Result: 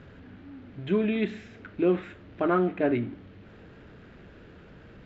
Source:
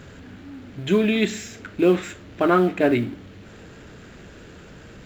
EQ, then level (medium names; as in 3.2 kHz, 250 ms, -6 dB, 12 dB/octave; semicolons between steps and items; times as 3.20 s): dynamic bell 5.6 kHz, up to -6 dB, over -45 dBFS, Q 0.98; distance through air 230 m; -5.5 dB